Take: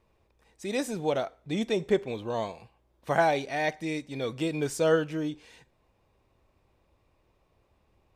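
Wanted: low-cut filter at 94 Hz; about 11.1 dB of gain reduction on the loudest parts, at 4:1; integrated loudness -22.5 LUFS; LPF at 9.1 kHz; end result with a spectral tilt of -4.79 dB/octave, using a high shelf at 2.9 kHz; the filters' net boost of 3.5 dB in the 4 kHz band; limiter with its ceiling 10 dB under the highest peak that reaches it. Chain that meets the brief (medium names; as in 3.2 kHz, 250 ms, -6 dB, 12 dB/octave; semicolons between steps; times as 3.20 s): high-pass 94 Hz; low-pass 9.1 kHz; treble shelf 2.9 kHz -3 dB; peaking EQ 4 kHz +6.5 dB; compression 4:1, threshold -32 dBFS; trim +18 dB; peak limiter -12 dBFS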